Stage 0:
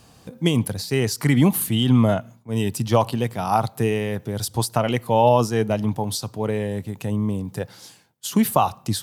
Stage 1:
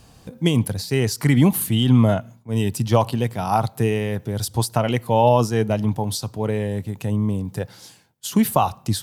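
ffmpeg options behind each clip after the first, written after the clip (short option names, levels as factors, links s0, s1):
-af "lowshelf=f=63:g=11.5,bandreject=f=1200:w=26"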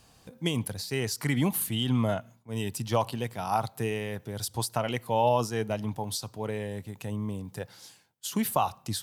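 -af "lowshelf=f=470:g=-7,volume=0.531"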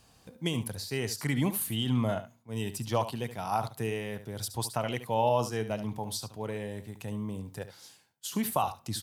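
-af "aecho=1:1:72:0.251,volume=0.75"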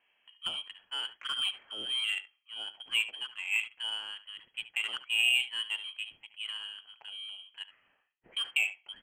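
-filter_complex "[0:a]acrossover=split=180 2400:gain=0.0708 1 0.126[s0][s1][s2];[s0][s1][s2]amix=inputs=3:normalize=0,lowpass=f=2900:t=q:w=0.5098,lowpass=f=2900:t=q:w=0.6013,lowpass=f=2900:t=q:w=0.9,lowpass=f=2900:t=q:w=2.563,afreqshift=-3400,adynamicsmooth=sensitivity=4.5:basefreq=2500"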